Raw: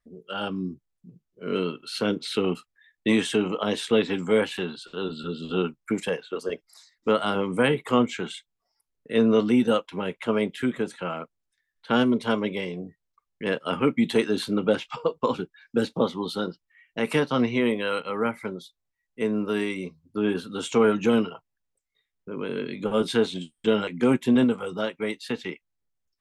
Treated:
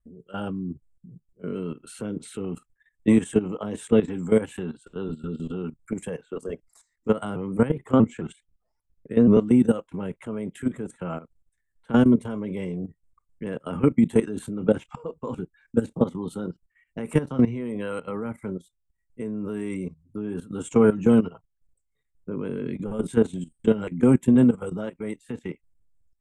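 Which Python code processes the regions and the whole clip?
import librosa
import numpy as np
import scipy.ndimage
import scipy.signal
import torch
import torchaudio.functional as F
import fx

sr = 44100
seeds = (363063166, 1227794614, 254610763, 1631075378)

y = fx.chain(x, sr, fx.lowpass(hz=3700.0, slope=6),
    fx.vibrato_shape(shape='saw_up', rate_hz=4.7, depth_cents=160.0), at=(7.36, 9.37))
y = fx.riaa(y, sr, side='playback')
y = fx.level_steps(y, sr, step_db=15)
y = fx.high_shelf_res(y, sr, hz=6100.0, db=11.5, q=3.0)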